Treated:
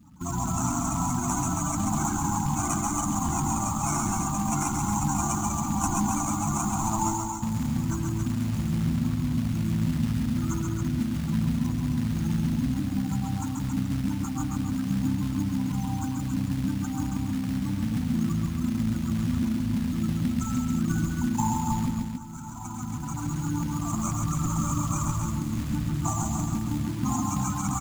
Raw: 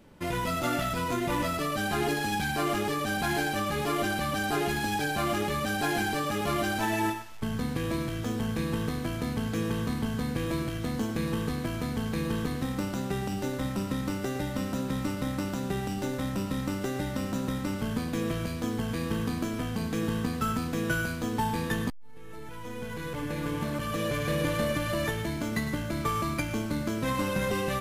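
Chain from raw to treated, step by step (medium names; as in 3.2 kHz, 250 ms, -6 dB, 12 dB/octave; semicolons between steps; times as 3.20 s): in parallel at -1 dB: peak limiter -26 dBFS, peak gain reduction 11 dB; on the sum: high-pass 45 Hz 24 dB/octave; sample-rate reducer 1.8 kHz, jitter 20%; Chebyshev band-stop 260–840 Hz, order 2; resonant high shelf 5.3 kHz +8 dB, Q 3; spectral gate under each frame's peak -15 dB strong; feedback delay 508 ms, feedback 54%, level -17 dB; short-mantissa float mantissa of 2-bit; on a send: loudspeakers at several distances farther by 46 m -4 dB, 94 m -6 dB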